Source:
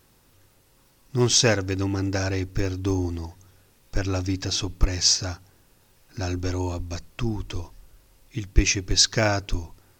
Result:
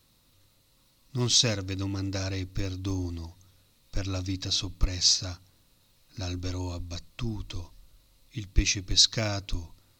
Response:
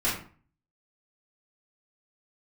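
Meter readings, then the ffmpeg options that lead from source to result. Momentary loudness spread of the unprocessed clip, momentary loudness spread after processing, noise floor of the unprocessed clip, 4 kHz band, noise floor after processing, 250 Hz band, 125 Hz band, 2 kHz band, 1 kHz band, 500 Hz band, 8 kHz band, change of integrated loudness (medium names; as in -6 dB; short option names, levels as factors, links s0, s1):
17 LU, 18 LU, -60 dBFS, -1.0 dB, -65 dBFS, -6.5 dB, -5.0 dB, -8.5 dB, -10.0 dB, -10.0 dB, -4.5 dB, -3.5 dB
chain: -filter_complex "[0:a]equalizer=f=400:t=o:w=0.33:g=-10,equalizer=f=800:t=o:w=0.33:g=-7,equalizer=f=1600:t=o:w=0.33:g=-7,equalizer=f=4000:t=o:w=0.33:g=10,acrossover=split=330|3000[s0][s1][s2];[s1]acompressor=threshold=0.0631:ratio=6[s3];[s0][s3][s2]amix=inputs=3:normalize=0,volume=0.562"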